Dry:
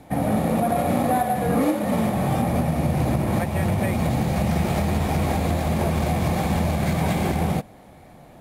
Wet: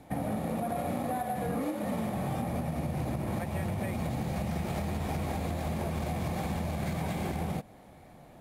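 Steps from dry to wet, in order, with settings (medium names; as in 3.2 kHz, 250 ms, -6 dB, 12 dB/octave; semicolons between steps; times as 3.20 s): compression, threshold -23 dBFS, peak gain reduction 7 dB; trim -6 dB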